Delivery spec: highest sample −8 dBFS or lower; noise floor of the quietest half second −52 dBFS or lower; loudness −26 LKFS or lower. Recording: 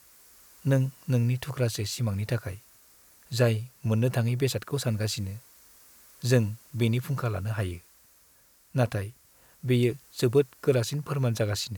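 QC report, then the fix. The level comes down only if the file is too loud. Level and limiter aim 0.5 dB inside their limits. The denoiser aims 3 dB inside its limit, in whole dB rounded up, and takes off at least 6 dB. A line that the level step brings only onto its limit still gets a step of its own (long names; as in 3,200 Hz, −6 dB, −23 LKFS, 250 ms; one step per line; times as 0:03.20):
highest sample −10.5 dBFS: in spec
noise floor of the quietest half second −60 dBFS: in spec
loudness −28.0 LKFS: in spec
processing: no processing needed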